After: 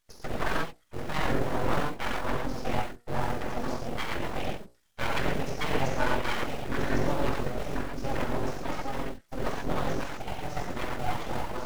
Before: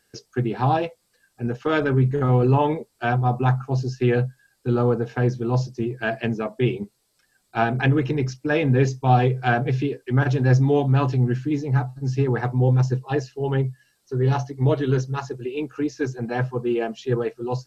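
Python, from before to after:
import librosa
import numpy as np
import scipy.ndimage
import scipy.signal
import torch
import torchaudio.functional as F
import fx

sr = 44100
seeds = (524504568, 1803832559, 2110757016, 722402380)

p1 = fx.schmitt(x, sr, flips_db=-24.5)
p2 = x + (p1 * 10.0 ** (-9.5 / 20.0))
p3 = fx.rev_gated(p2, sr, seeds[0], gate_ms=240, shape='flat', drr_db=-3.5)
p4 = fx.stretch_grains(p3, sr, factor=0.66, grain_ms=45.0)
p5 = fx.hum_notches(p4, sr, base_hz=60, count=8)
p6 = np.abs(p5)
y = p6 * 10.0 ** (-8.5 / 20.0)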